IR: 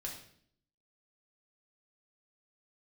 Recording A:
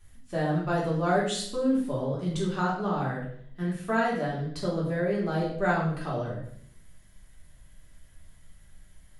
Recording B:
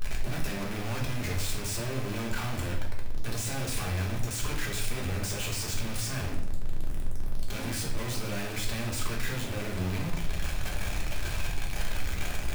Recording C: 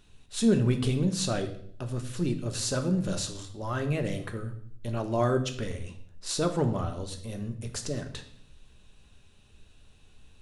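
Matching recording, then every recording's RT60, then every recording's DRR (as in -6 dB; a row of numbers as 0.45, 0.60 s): B; 0.60, 0.60, 0.60 s; -6.5, -2.0, 5.5 dB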